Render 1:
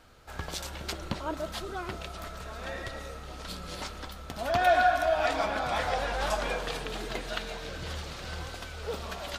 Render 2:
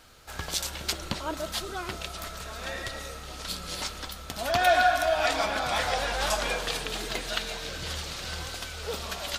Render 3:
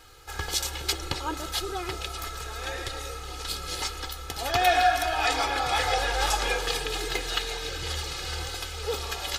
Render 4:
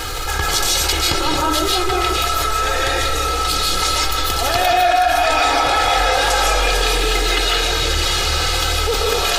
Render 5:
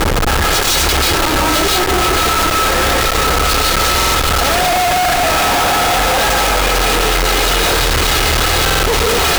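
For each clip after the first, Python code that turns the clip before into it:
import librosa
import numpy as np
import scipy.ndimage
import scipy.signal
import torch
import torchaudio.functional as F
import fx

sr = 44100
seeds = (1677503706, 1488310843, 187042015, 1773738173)

y1 = fx.high_shelf(x, sr, hz=2500.0, db=10.0)
y2 = y1 + 0.81 * np.pad(y1, (int(2.4 * sr / 1000.0), 0))[:len(y1)]
y3 = fx.rev_freeverb(y2, sr, rt60_s=0.51, hf_ratio=0.6, predelay_ms=110, drr_db=-4.0)
y3 = fx.env_flatten(y3, sr, amount_pct=70)
y3 = y3 * 10.0 ** (-1.0 / 20.0)
y4 = y3 + 10.0 ** (-8.5 / 20.0) * np.pad(y3, (int(941 * sr / 1000.0), 0))[:len(y3)]
y4 = fx.schmitt(y4, sr, flips_db=-23.0)
y4 = fx.buffer_glitch(y4, sr, at_s=(3.96, 8.64), block=2048, repeats=3)
y4 = y4 * 10.0 ** (3.5 / 20.0)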